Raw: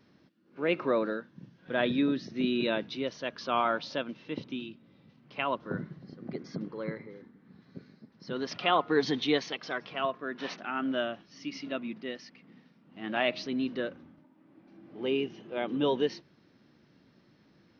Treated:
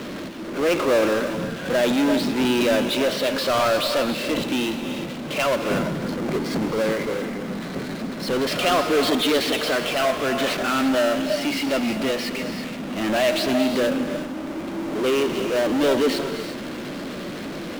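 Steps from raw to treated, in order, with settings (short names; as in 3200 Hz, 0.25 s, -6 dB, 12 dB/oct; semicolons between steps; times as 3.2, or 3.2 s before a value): speaker cabinet 220–4100 Hz, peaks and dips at 580 Hz +6 dB, 900 Hz -9 dB, 1800 Hz -4 dB; power-law curve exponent 0.35; non-linear reverb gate 0.38 s rising, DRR 7 dB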